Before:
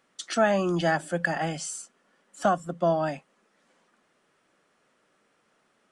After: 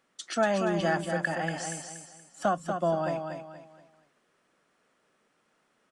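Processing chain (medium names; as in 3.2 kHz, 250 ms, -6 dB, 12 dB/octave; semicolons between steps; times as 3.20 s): feedback delay 237 ms, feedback 34%, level -6 dB; trim -3.5 dB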